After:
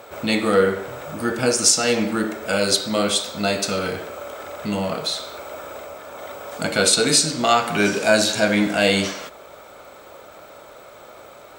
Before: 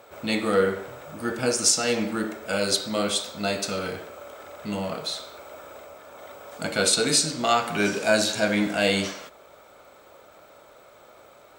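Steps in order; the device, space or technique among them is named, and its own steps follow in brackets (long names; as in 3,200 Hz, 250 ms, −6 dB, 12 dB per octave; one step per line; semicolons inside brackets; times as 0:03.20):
parallel compression (in parallel at −3 dB: downward compressor, threshold −35 dBFS, peak gain reduction 18 dB)
on the sum: level +3.5 dB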